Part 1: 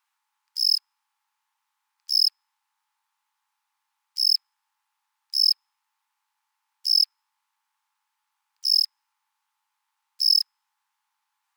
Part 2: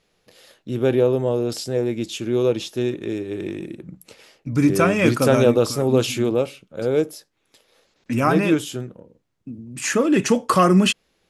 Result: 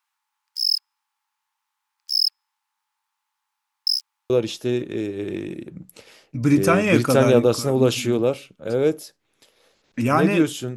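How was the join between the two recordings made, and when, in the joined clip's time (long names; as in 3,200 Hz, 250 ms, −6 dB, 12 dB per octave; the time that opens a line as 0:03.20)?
part 1
0:03.87–0:04.30: reverse
0:04.30: continue with part 2 from 0:02.42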